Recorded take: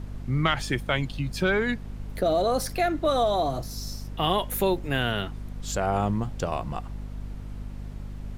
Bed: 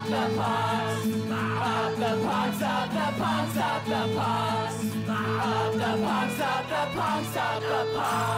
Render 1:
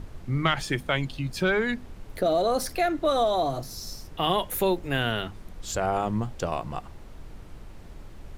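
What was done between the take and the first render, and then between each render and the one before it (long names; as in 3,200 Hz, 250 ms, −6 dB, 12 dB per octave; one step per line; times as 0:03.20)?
mains-hum notches 50/100/150/200/250 Hz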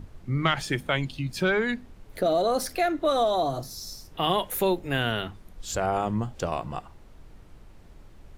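noise reduction from a noise print 6 dB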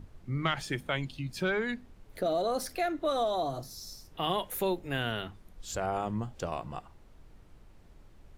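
level −6 dB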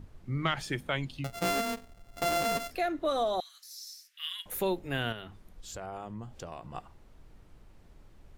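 0:01.24–0:02.71: samples sorted by size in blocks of 64 samples
0:03.40–0:04.46: Butterworth high-pass 1,700 Hz
0:05.12–0:06.75: downward compressor 2 to 1, threshold −43 dBFS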